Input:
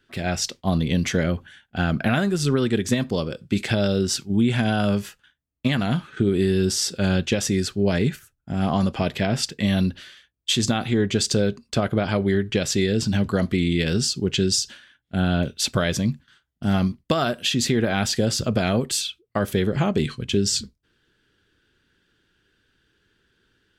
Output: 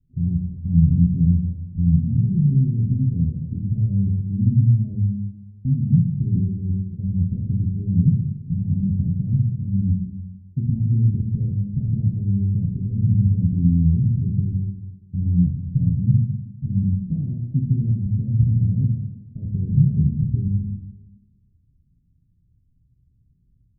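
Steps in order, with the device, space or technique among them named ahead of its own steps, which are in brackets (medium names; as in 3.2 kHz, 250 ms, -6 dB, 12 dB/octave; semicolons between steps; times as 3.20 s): club heard from the street (peak limiter -15.5 dBFS, peak gain reduction 6.5 dB; low-pass 150 Hz 24 dB/octave; reverberation RT60 1.4 s, pre-delay 7 ms, DRR -4 dB); trim +8.5 dB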